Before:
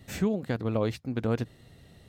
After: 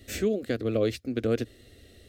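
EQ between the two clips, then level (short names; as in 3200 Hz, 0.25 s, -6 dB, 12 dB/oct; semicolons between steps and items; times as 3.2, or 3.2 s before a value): fixed phaser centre 380 Hz, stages 4; +5.0 dB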